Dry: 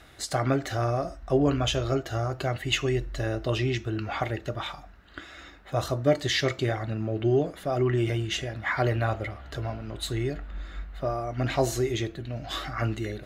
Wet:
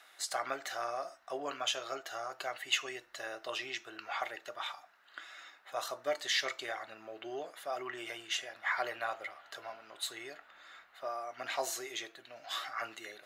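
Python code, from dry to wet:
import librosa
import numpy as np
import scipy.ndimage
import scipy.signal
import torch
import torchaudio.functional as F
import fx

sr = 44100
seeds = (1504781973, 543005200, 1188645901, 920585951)

y = scipy.signal.sosfilt(scipy.signal.cheby1(2, 1.0, 900.0, 'highpass', fs=sr, output='sos'), x)
y = fx.high_shelf(y, sr, hz=6600.0, db=4.0)
y = y * 10.0 ** (-4.5 / 20.0)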